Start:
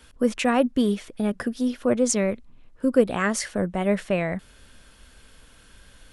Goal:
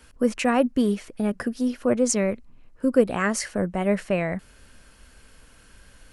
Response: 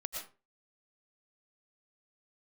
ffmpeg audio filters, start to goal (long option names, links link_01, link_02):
-af "equalizer=frequency=3500:width_type=o:width=0.24:gain=-8"